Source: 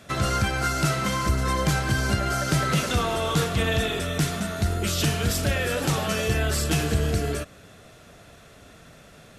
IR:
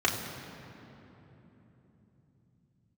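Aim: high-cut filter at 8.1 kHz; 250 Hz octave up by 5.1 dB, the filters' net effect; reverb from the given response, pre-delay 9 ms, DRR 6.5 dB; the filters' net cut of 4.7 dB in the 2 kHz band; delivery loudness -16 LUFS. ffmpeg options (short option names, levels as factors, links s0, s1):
-filter_complex "[0:a]lowpass=8100,equalizer=f=250:t=o:g=7.5,equalizer=f=2000:t=o:g=-6.5,asplit=2[s0][s1];[1:a]atrim=start_sample=2205,adelay=9[s2];[s1][s2]afir=irnorm=-1:irlink=0,volume=0.112[s3];[s0][s3]amix=inputs=2:normalize=0,volume=2"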